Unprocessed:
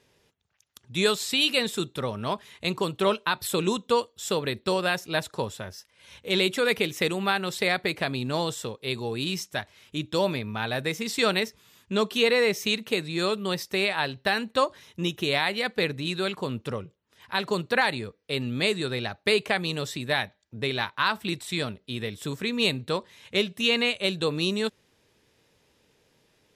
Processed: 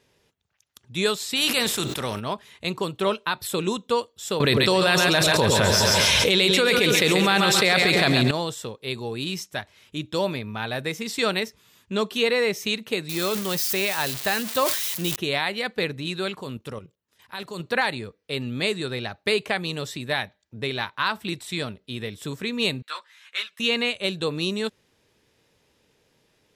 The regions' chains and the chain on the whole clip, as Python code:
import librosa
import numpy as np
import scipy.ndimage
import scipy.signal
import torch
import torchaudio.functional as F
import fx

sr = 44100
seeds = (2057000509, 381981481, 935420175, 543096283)

y = fx.spec_flatten(x, sr, power=0.66, at=(1.35, 2.19), fade=0.02)
y = fx.sustainer(y, sr, db_per_s=36.0, at=(1.35, 2.19), fade=0.02)
y = fx.chain(y, sr, fx.peak_eq(hz=5000.0, db=4.5, octaves=1.9),
    fx.echo_split(split_hz=560.0, low_ms=101, high_ms=137, feedback_pct=52, wet_db=-8),
    fx.env_flatten(amount_pct=100), at=(4.4, 8.31))
y = fx.chain(y, sr, fx.crossing_spikes(level_db=-18.5),
    fx.peak_eq(hz=10000.0, db=-3.0, octaves=1.7),
    fx.sustainer(db_per_s=58.0), at=(13.09, 15.16))
y = fx.chain(y, sr, fx.high_shelf(hz=6900.0, db=9.5),
    fx.level_steps(step_db=11), at=(16.41, 17.6))
y = fx.chain(y, sr, fx.highpass_res(hz=1400.0, q=2.5),
    fx.ensemble(), at=(22.82, 23.6))